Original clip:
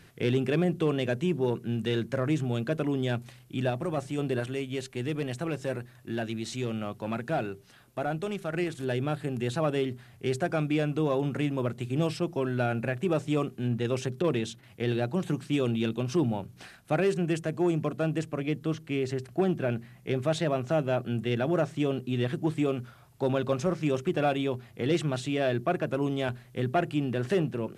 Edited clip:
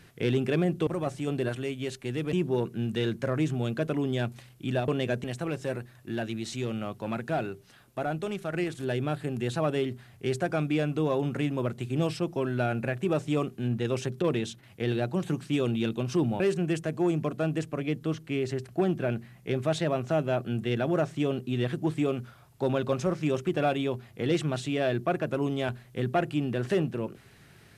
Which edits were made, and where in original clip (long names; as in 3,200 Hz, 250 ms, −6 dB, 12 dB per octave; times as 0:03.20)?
0:00.87–0:01.23: swap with 0:03.78–0:05.24
0:16.40–0:17.00: remove